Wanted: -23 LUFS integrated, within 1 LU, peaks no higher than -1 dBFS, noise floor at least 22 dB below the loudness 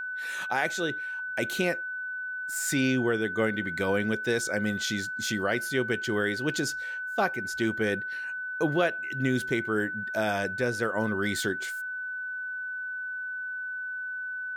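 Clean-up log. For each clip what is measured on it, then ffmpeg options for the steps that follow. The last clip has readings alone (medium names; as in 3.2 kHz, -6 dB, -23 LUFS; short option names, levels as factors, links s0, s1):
steady tone 1.5 kHz; tone level -32 dBFS; loudness -29.0 LUFS; peak level -13.5 dBFS; loudness target -23.0 LUFS
-> -af "bandreject=f=1500:w=30"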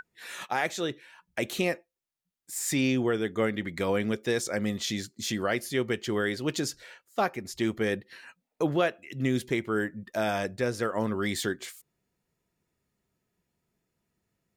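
steady tone not found; loudness -30.0 LUFS; peak level -14.0 dBFS; loudness target -23.0 LUFS
-> -af "volume=2.24"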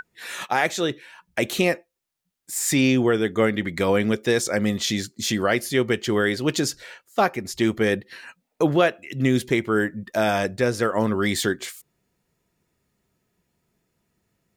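loudness -23.0 LUFS; peak level -7.0 dBFS; noise floor -76 dBFS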